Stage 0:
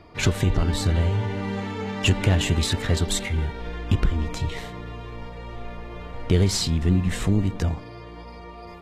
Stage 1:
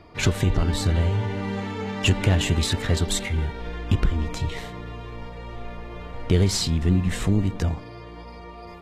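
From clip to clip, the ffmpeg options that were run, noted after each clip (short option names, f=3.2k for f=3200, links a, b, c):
-af anull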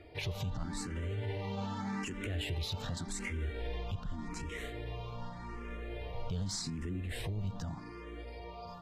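-filter_complex "[0:a]acompressor=threshold=-26dB:ratio=4,alimiter=limit=-23.5dB:level=0:latency=1:release=25,asplit=2[a][b];[b]afreqshift=0.85[c];[a][c]amix=inputs=2:normalize=1,volume=-3dB"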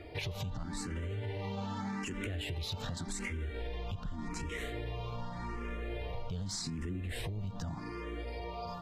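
-af "acompressor=threshold=-41dB:ratio=6,volume=6dB"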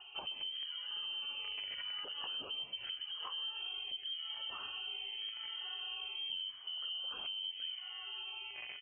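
-filter_complex "[0:a]acrossover=split=680|1500[a][b][c];[b]acrusher=bits=6:mix=0:aa=0.000001[d];[a][d][c]amix=inputs=3:normalize=0,aecho=1:1:128:0.126,lowpass=f=2.7k:t=q:w=0.5098,lowpass=f=2.7k:t=q:w=0.6013,lowpass=f=2.7k:t=q:w=0.9,lowpass=f=2.7k:t=q:w=2.563,afreqshift=-3200,volume=-4dB"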